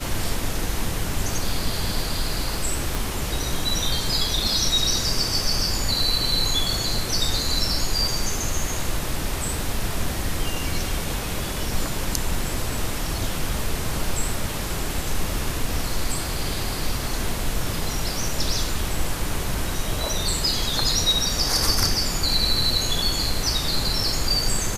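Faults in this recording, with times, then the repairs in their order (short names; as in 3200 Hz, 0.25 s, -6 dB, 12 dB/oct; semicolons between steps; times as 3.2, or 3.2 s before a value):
2.95 pop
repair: de-click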